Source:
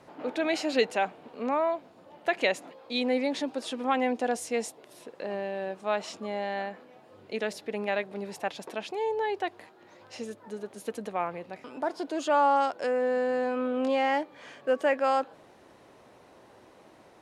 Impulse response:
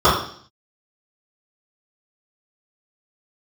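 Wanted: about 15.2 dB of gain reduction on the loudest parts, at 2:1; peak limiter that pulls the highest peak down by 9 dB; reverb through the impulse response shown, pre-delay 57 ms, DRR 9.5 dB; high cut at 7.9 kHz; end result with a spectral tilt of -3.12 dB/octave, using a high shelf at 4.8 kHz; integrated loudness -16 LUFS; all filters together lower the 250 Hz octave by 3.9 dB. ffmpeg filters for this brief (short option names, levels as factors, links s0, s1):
-filter_complex "[0:a]lowpass=7900,equalizer=f=250:t=o:g=-4.5,highshelf=f=4800:g=5.5,acompressor=threshold=0.00355:ratio=2,alimiter=level_in=3.55:limit=0.0631:level=0:latency=1,volume=0.282,asplit=2[s0][s1];[1:a]atrim=start_sample=2205,adelay=57[s2];[s1][s2]afir=irnorm=-1:irlink=0,volume=0.0158[s3];[s0][s3]amix=inputs=2:normalize=0,volume=29.9"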